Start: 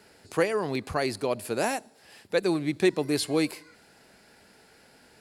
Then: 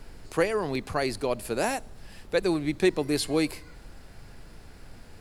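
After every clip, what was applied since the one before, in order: added noise brown -44 dBFS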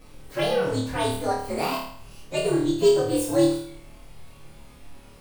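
frequency axis rescaled in octaves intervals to 125%; flutter echo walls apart 4.6 m, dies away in 0.59 s; trim +2.5 dB

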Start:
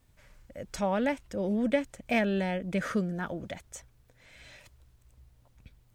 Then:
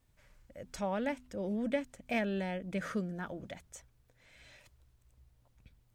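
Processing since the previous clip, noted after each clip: de-hum 83.75 Hz, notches 3; trim -6 dB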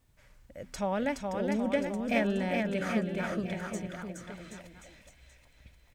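bouncing-ball echo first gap 420 ms, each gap 0.85×, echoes 5; trim +3.5 dB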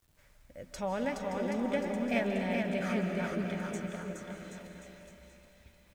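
bit crusher 11-bit; doubling 12 ms -11 dB; algorithmic reverb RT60 3.4 s, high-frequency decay 0.75×, pre-delay 115 ms, DRR 4.5 dB; trim -3.5 dB

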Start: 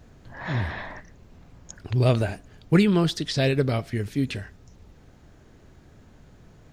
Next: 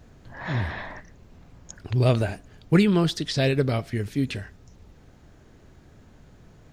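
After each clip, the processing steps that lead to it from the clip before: no audible change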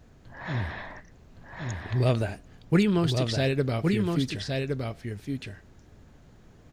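delay 1116 ms -4 dB; trim -3.5 dB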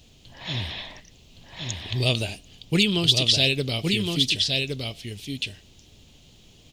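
resonant high shelf 2.2 kHz +11.5 dB, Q 3; trim -1 dB

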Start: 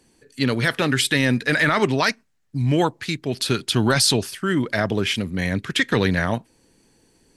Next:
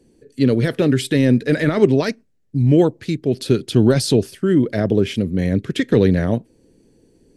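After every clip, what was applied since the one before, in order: resonant low shelf 670 Hz +11 dB, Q 1.5; trim -6 dB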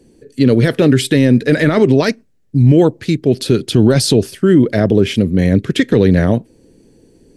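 peak limiter -8 dBFS, peak gain reduction 6.5 dB; trim +6.5 dB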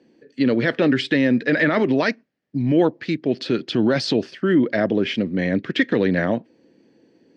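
cabinet simulation 260–4600 Hz, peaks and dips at 420 Hz -7 dB, 1.8 kHz +4 dB, 3.8 kHz -4 dB; trim -3 dB

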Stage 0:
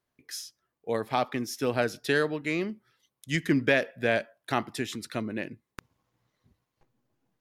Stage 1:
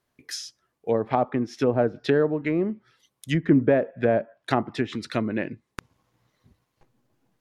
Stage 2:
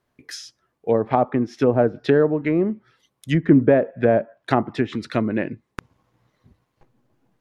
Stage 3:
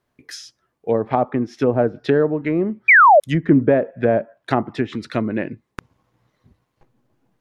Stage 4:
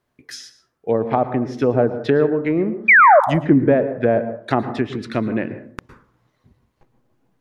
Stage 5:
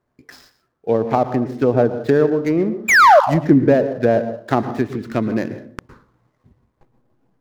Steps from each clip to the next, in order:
low-pass that closes with the level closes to 800 Hz, closed at -25 dBFS; trim +6.5 dB
treble shelf 3 kHz -8 dB; trim +4.5 dB
painted sound fall, 2.88–3.20 s, 540–2500 Hz -9 dBFS
plate-style reverb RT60 0.56 s, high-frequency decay 0.45×, pre-delay 100 ms, DRR 11.5 dB
median filter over 15 samples; trim +1.5 dB

